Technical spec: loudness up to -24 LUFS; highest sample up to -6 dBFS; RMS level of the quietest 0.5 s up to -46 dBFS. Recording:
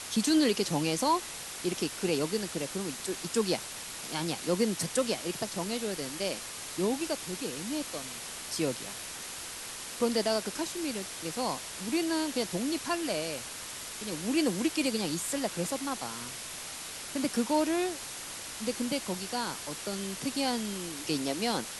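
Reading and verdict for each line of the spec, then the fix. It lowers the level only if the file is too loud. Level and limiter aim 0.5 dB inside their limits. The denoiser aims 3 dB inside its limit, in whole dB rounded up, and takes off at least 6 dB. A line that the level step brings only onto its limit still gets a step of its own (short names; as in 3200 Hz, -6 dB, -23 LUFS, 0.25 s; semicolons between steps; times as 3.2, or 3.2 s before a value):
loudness -32.0 LUFS: OK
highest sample -15.0 dBFS: OK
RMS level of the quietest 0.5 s -41 dBFS: fail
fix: denoiser 8 dB, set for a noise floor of -41 dBFS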